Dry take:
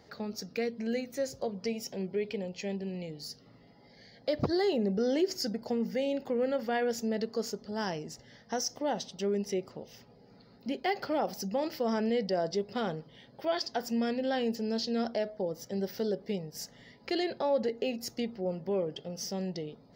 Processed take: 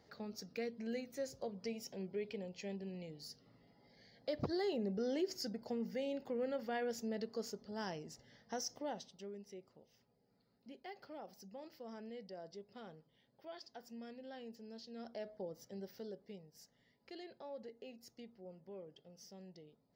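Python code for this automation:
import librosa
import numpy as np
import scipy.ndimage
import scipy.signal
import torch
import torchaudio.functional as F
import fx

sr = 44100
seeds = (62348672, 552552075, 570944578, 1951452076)

y = fx.gain(x, sr, db=fx.line((8.77, -9.0), (9.4, -20.0), (14.91, -20.0), (15.33, -11.0), (16.62, -20.0)))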